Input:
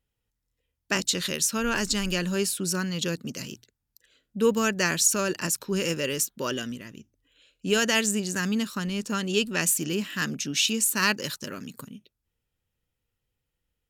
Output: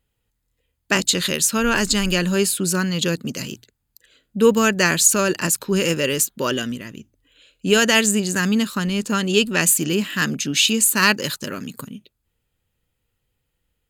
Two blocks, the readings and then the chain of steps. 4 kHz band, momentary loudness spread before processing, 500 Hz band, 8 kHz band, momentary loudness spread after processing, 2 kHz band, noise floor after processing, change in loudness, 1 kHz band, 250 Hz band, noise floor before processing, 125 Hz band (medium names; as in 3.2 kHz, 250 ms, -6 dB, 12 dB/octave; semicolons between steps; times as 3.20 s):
+7.0 dB, 15 LU, +7.5 dB, +7.0 dB, 14 LU, +7.5 dB, -75 dBFS, +7.0 dB, +7.5 dB, +7.5 dB, -83 dBFS, +7.5 dB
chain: band-stop 5.6 kHz, Q 6.6; trim +7.5 dB